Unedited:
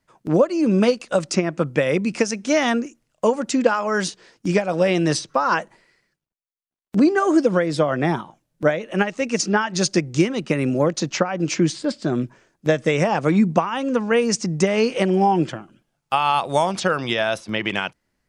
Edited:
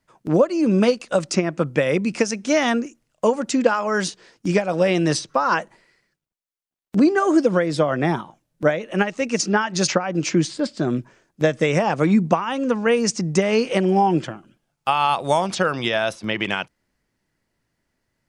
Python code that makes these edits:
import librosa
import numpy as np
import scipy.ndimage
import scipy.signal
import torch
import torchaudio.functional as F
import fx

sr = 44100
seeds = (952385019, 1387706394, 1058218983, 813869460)

y = fx.edit(x, sr, fx.cut(start_s=9.88, length_s=1.25), tone=tone)